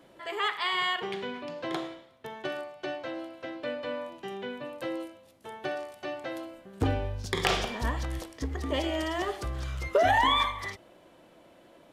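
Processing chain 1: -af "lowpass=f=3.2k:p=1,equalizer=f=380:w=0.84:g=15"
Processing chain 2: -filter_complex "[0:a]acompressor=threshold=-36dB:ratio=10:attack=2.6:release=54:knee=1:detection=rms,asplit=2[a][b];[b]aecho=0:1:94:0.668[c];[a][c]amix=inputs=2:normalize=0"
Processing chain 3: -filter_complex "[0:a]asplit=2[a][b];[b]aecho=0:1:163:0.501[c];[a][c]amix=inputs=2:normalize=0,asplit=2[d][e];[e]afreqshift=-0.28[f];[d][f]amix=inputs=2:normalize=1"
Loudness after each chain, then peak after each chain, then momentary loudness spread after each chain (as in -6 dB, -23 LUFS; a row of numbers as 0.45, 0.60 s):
-24.0, -39.5, -33.0 LUFS; -1.5, -23.5, -11.0 dBFS; 11, 6, 15 LU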